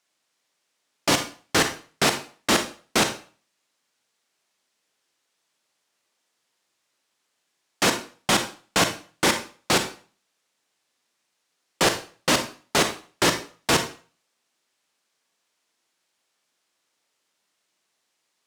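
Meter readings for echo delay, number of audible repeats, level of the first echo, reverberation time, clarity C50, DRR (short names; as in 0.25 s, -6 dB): none, none, none, 0.40 s, 9.5 dB, 7.0 dB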